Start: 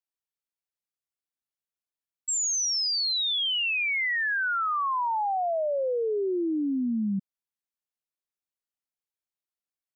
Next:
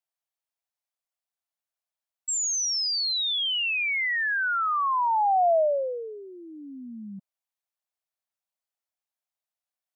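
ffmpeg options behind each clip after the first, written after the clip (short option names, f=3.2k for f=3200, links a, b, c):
-af "lowshelf=f=490:t=q:w=3:g=-9.5"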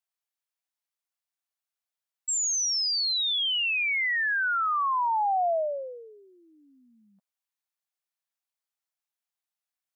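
-af "highpass=800"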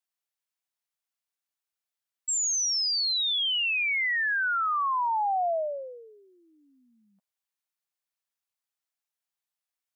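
-af "lowshelf=f=470:g=-5"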